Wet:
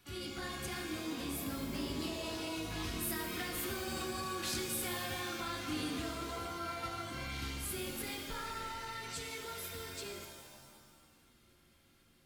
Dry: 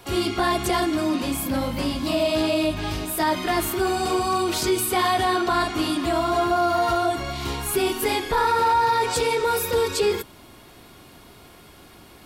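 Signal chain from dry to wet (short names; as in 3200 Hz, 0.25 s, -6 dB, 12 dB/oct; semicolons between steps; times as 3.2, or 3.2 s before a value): Doppler pass-by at 4.39, 8 m/s, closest 4.8 m; compressor 12:1, threshold -35 dBFS, peak gain reduction 17.5 dB; band shelf 620 Hz -10.5 dB; shimmer reverb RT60 1.5 s, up +7 st, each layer -2 dB, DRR 5 dB; gain +1 dB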